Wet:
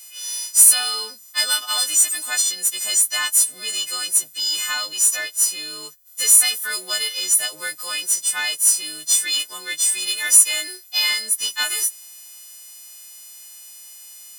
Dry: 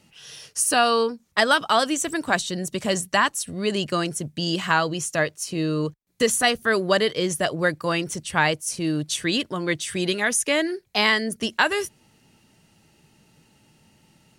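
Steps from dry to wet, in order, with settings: frequency quantiser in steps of 3 st; differentiator; power-law curve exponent 0.7; HPF 240 Hz 6 dB/oct; gain -3.5 dB

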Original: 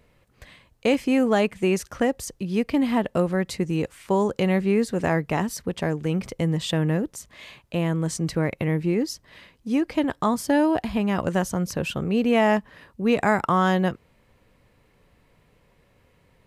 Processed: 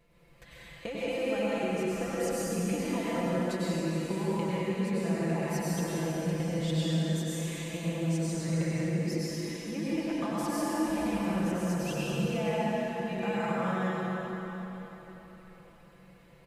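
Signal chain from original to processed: comb 5.9 ms, depth 91%; compressor 10:1, threshold -27 dBFS, peak gain reduction 16 dB; plate-style reverb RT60 4.1 s, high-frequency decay 0.8×, pre-delay 85 ms, DRR -9 dB; gain -9 dB

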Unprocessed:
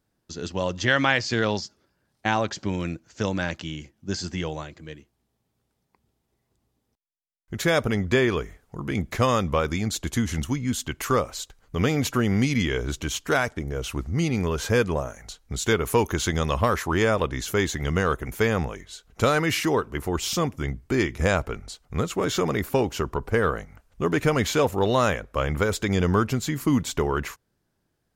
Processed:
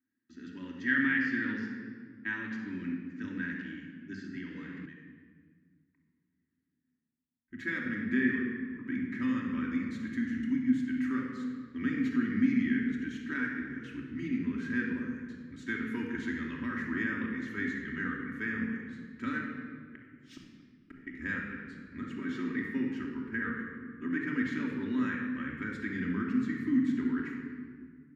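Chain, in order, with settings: double band-pass 670 Hz, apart 2.8 oct; 19.4–21.07 flipped gate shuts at -34 dBFS, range -30 dB; shoebox room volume 2800 m³, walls mixed, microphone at 2.8 m; 4.36–4.86 three-band squash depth 100%; gain -4 dB

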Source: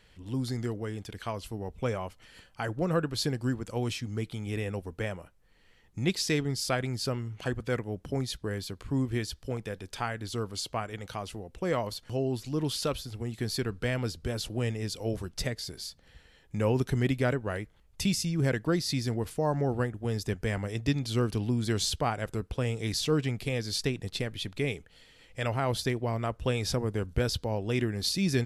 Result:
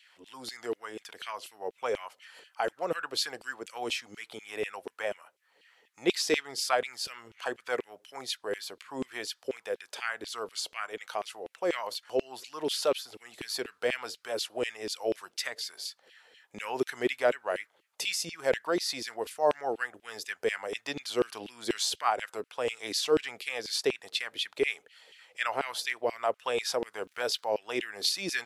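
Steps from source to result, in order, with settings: 27.03–27.54 crackle 140/s -52 dBFS; LFO high-pass saw down 4.1 Hz 360–3000 Hz

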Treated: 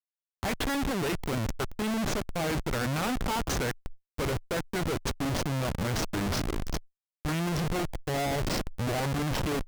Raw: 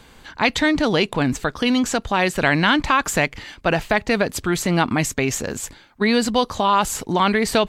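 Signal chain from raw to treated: speed glide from 93% -> 66%; Schmitt trigger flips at -22.5 dBFS; tube stage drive 36 dB, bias 0.55; gain +7.5 dB

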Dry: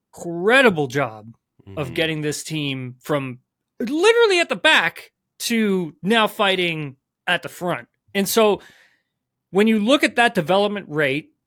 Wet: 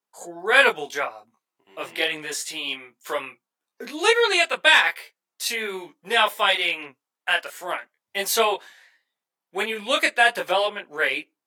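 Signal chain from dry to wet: HPF 670 Hz 12 dB/oct; detuned doubles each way 16 cents; gain +3 dB

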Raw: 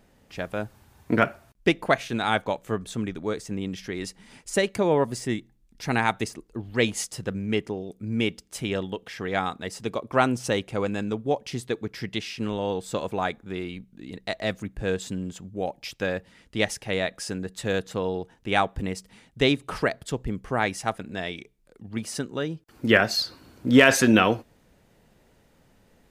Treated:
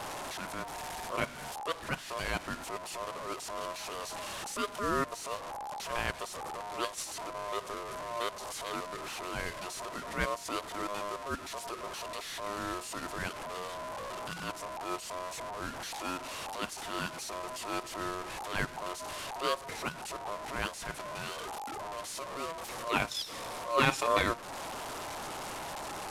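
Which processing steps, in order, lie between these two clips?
delta modulation 64 kbps, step -26 dBFS; ring modulator 820 Hz; transient shaper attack -10 dB, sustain -6 dB; gain -5 dB

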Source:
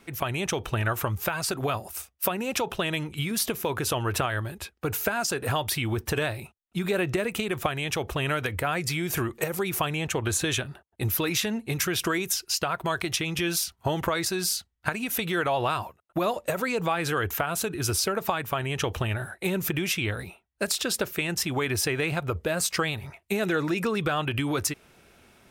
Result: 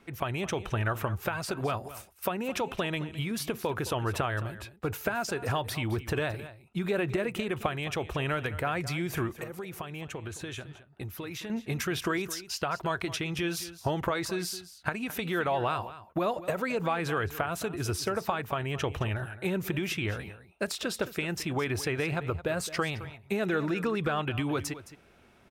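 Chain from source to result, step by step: high shelf 4300 Hz -10 dB; 9.35–11.5 compressor 3:1, threshold -36 dBFS, peak gain reduction 10.5 dB; on a send: echo 0.216 s -15 dB; on the sum: gain -2.5 dB

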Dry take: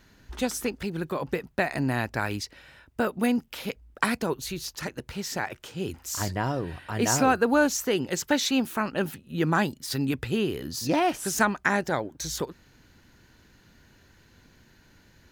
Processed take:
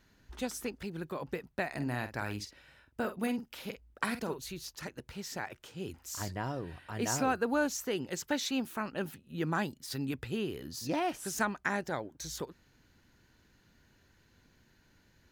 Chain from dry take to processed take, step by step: 1.74–4.39 doubler 48 ms -10 dB; gain -8.5 dB

